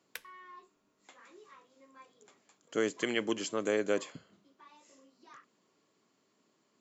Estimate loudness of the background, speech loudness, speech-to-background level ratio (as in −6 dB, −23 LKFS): −49.0 LKFS, −33.5 LKFS, 15.5 dB